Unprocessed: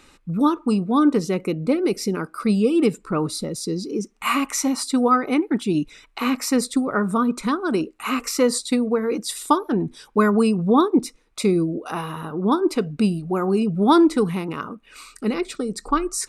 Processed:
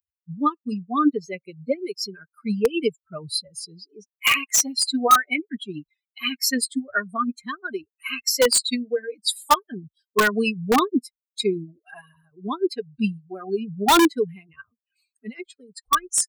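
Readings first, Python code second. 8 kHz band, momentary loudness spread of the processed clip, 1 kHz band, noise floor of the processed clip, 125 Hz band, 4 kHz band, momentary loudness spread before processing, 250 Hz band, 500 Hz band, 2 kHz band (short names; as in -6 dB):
+5.0 dB, 19 LU, +0.5 dB, under -85 dBFS, -10.0 dB, +6.0 dB, 10 LU, -7.0 dB, -3.5 dB, +4.5 dB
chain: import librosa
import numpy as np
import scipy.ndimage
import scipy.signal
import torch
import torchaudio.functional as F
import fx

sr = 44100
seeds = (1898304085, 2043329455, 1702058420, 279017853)

p1 = fx.bin_expand(x, sr, power=3.0)
p2 = fx.highpass(p1, sr, hz=860.0, slope=6)
p3 = fx.dynamic_eq(p2, sr, hz=3200.0, q=0.96, threshold_db=-48.0, ratio=4.0, max_db=4)
p4 = (np.mod(10.0 ** (20.5 / 20.0) * p3 + 1.0, 2.0) - 1.0) / 10.0 ** (20.5 / 20.0)
p5 = p3 + (p4 * librosa.db_to_amplitude(-3.5))
y = p5 * librosa.db_to_amplitude(7.0)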